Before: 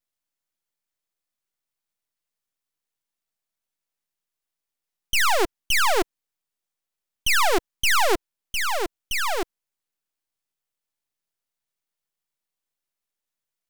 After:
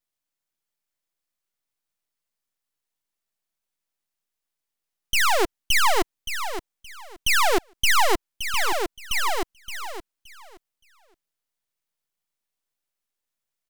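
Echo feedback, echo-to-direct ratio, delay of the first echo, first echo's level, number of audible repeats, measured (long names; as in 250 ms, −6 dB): 22%, −9.5 dB, 571 ms, −9.5 dB, 2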